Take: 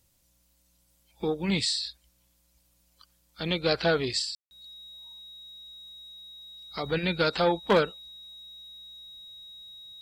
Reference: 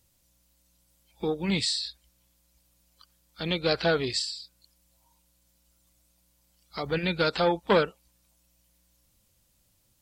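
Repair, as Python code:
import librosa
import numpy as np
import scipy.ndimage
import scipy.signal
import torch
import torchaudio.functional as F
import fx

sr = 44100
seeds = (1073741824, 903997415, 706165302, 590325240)

y = fx.fix_declip(x, sr, threshold_db=-13.0)
y = fx.notch(y, sr, hz=3800.0, q=30.0)
y = fx.fix_ambience(y, sr, seeds[0], print_start_s=0.0, print_end_s=0.5, start_s=4.35, end_s=4.51)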